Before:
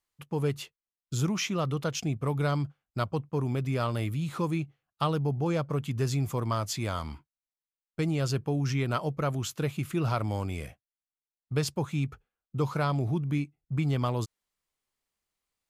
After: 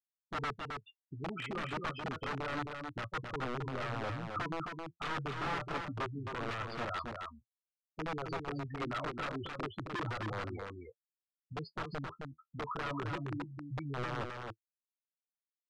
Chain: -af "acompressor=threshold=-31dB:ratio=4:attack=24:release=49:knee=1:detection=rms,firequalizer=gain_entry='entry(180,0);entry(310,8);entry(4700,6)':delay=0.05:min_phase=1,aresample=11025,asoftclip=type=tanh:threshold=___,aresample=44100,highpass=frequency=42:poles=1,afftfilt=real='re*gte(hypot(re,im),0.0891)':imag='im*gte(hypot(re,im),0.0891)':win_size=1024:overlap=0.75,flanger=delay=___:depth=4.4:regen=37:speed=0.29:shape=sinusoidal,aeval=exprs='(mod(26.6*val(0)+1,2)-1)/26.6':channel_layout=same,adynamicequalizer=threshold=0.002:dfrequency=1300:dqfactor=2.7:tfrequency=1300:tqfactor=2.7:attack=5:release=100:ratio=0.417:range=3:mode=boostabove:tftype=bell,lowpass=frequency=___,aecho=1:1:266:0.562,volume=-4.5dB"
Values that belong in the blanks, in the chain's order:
-22dB, 8.2, 3.3k